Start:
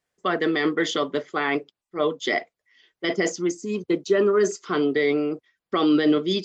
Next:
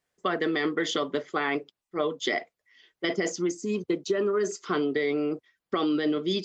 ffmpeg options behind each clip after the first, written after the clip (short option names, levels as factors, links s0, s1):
-af "acompressor=threshold=0.0708:ratio=6"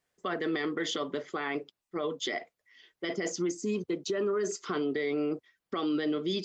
-af "alimiter=limit=0.0708:level=0:latency=1:release=79"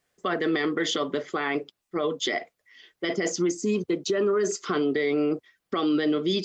-af "bandreject=f=940:w=18,volume=2"